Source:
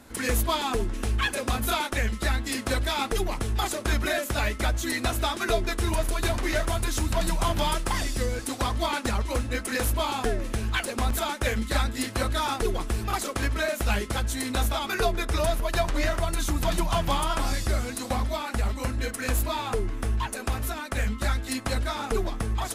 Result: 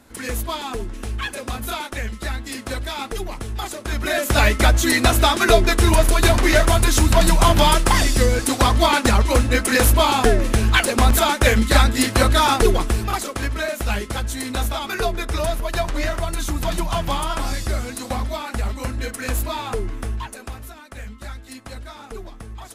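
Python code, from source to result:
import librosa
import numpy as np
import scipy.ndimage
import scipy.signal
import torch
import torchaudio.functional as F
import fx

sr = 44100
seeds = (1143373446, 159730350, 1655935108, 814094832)

y = fx.gain(x, sr, db=fx.line((3.89, -1.0), (4.36, 11.0), (12.68, 11.0), (13.3, 2.5), (19.95, 2.5), (20.73, -8.0)))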